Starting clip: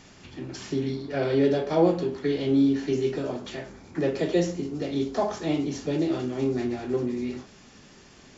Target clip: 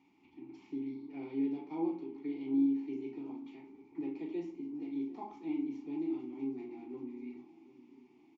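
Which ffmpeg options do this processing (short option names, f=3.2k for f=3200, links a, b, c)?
-filter_complex "[0:a]asplit=3[a][b][c];[a]bandpass=f=300:t=q:w=8,volume=0dB[d];[b]bandpass=f=870:t=q:w=8,volume=-6dB[e];[c]bandpass=f=2.24k:t=q:w=8,volume=-9dB[f];[d][e][f]amix=inputs=3:normalize=0,bandreject=f=60:t=h:w=6,bandreject=f=120:t=h:w=6,bandreject=f=180:t=h:w=6,bandreject=f=240:t=h:w=6,bandreject=f=300:t=h:w=6,asplit=2[g][h];[h]adelay=37,volume=-10.5dB[i];[g][i]amix=inputs=2:normalize=0,asplit=2[j][k];[k]adelay=748,lowpass=f=2k:p=1,volume=-17dB,asplit=2[l][m];[m]adelay=748,lowpass=f=2k:p=1,volume=0.47,asplit=2[n][o];[o]adelay=748,lowpass=f=2k:p=1,volume=0.47,asplit=2[p][q];[q]adelay=748,lowpass=f=2k:p=1,volume=0.47[r];[l][n][p][r]amix=inputs=4:normalize=0[s];[j][s]amix=inputs=2:normalize=0,volume=-4.5dB"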